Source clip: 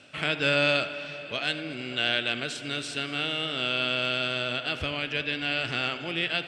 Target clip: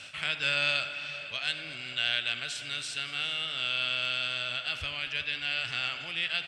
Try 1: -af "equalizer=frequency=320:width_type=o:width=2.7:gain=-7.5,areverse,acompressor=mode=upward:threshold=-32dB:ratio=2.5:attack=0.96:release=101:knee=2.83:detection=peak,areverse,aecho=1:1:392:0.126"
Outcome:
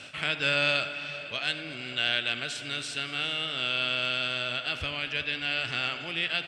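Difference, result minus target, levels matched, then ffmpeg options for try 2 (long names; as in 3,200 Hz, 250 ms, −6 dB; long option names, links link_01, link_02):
250 Hz band +8.0 dB
-af "equalizer=frequency=320:width_type=o:width=2.7:gain=-19,areverse,acompressor=mode=upward:threshold=-32dB:ratio=2.5:attack=0.96:release=101:knee=2.83:detection=peak,areverse,aecho=1:1:392:0.126"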